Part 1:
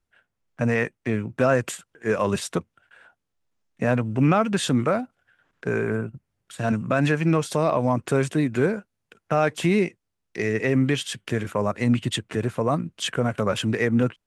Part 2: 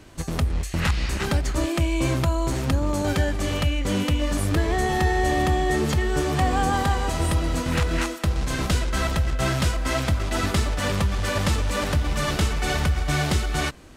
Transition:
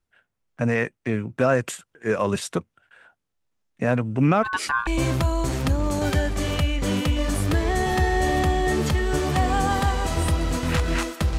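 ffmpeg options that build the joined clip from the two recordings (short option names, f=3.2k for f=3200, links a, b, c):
-filter_complex "[0:a]asplit=3[a][b][c];[a]afade=t=out:st=4.42:d=0.02[d];[b]aeval=exprs='val(0)*sin(2*PI*1300*n/s)':c=same,afade=t=in:st=4.42:d=0.02,afade=t=out:st=4.87:d=0.02[e];[c]afade=t=in:st=4.87:d=0.02[f];[d][e][f]amix=inputs=3:normalize=0,apad=whole_dur=11.38,atrim=end=11.38,atrim=end=4.872[g];[1:a]atrim=start=1.898:end=8.41[h];[g][h]acrossfade=d=0.004:c1=hsin:c2=hsin"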